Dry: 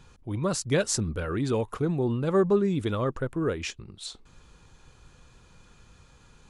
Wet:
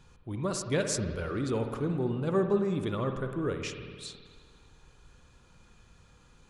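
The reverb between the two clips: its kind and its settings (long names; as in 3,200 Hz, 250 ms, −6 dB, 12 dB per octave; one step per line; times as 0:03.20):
spring reverb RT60 1.8 s, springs 53 ms, chirp 35 ms, DRR 5.5 dB
level −4.5 dB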